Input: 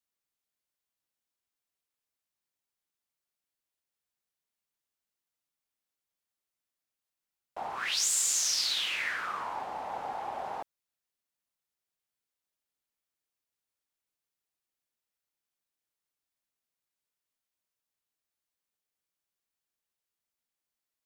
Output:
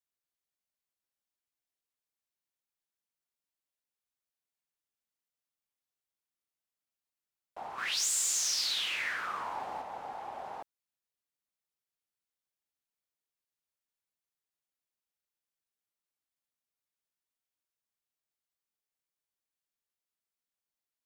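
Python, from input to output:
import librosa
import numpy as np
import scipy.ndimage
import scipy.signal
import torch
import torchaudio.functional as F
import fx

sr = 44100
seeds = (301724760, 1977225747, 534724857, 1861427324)

y = fx.leveller(x, sr, passes=1, at=(7.78, 9.82))
y = y * librosa.db_to_amplitude(-5.0)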